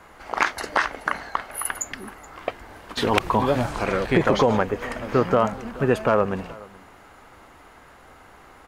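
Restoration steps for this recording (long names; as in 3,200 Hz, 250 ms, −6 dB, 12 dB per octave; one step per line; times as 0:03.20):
echo removal 426 ms −22 dB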